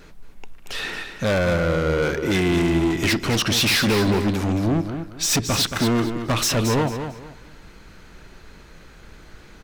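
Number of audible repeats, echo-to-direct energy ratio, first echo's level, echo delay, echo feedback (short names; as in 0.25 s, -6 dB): 3, -8.0 dB, -8.5 dB, 0.224 s, 26%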